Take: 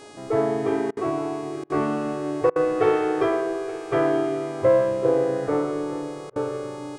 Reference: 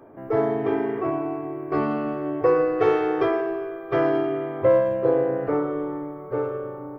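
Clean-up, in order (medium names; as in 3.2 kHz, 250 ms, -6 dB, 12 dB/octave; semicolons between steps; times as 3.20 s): de-hum 415.9 Hz, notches 24; interpolate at 0.91/1.64/2.50/6.30 s, 57 ms; inverse comb 870 ms -18 dB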